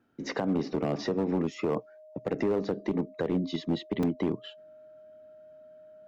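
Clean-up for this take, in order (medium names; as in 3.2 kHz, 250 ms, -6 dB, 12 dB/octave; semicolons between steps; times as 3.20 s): clip repair -21 dBFS; band-stop 620 Hz, Q 30; interpolate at 4.03 s, 3.6 ms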